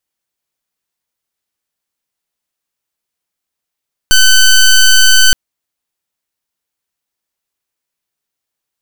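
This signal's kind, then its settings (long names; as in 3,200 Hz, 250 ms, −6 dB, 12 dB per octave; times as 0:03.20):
pulse wave 1,520 Hz, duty 13% −5.5 dBFS 1.22 s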